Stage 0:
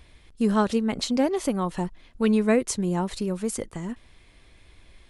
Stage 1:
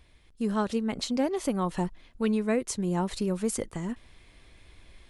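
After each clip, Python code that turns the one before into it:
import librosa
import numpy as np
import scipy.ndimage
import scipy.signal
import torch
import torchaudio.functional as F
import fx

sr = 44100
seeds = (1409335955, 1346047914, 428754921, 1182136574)

y = fx.rider(x, sr, range_db=3, speed_s=0.5)
y = F.gain(torch.from_numpy(y), -3.5).numpy()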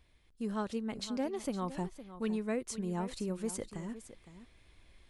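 y = x + 10.0 ** (-13.5 / 20.0) * np.pad(x, (int(511 * sr / 1000.0), 0))[:len(x)]
y = F.gain(torch.from_numpy(y), -8.0).numpy()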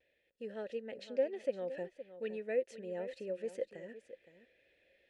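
y = fx.vowel_filter(x, sr, vowel='e')
y = fx.vibrato(y, sr, rate_hz=0.42, depth_cents=18.0)
y = F.gain(torch.from_numpy(y), 9.0).numpy()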